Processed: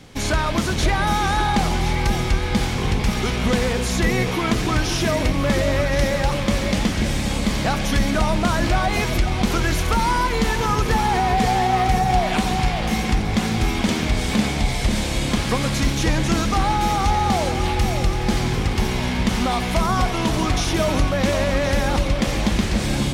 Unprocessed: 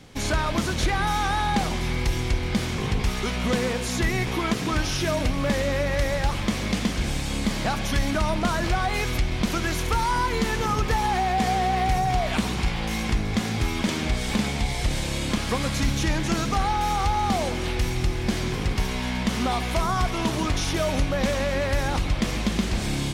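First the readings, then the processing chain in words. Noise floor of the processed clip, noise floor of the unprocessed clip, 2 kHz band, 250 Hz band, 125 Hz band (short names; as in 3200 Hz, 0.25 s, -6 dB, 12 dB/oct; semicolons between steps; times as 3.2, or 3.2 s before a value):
-24 dBFS, -28 dBFS, +4.0 dB, +5.0 dB, +4.5 dB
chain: echo with dull and thin repeats by turns 0.536 s, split 860 Hz, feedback 58%, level -5.5 dB; gain +3.5 dB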